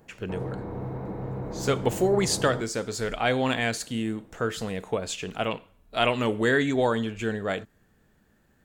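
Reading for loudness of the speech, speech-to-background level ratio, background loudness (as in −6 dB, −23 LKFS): −27.0 LKFS, 8.0 dB, −35.0 LKFS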